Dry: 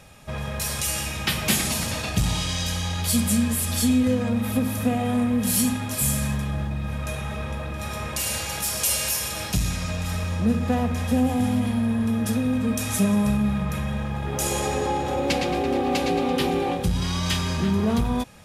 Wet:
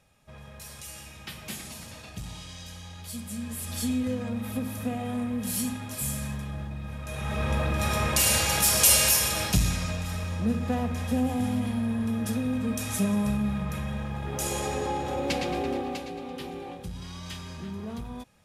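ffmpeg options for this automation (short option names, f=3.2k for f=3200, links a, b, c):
-af "volume=4.5dB,afade=t=in:st=3.29:d=0.54:silence=0.398107,afade=t=in:st=7.08:d=0.49:silence=0.237137,afade=t=out:st=8.96:d=1.12:silence=0.334965,afade=t=out:st=15.65:d=0.41:silence=0.334965"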